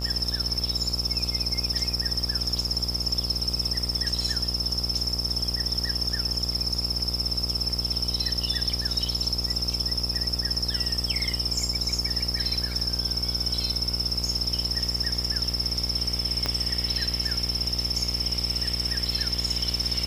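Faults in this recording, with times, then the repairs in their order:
buzz 60 Hz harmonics 23 -32 dBFS
16.46 pop -11 dBFS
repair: de-click; de-hum 60 Hz, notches 23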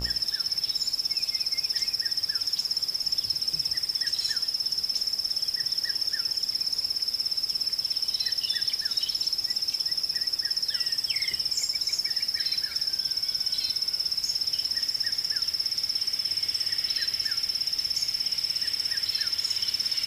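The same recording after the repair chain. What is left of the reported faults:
16.46 pop

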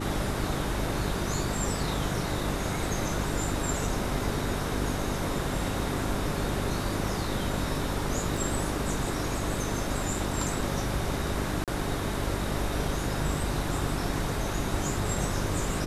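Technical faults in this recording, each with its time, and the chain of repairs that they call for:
hum 50 Hz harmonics 8 -34 dBFS
8.37 gap 4.2 ms
11.64–11.68 gap 37 ms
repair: de-hum 50 Hz, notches 8; interpolate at 8.37, 4.2 ms; interpolate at 11.64, 37 ms

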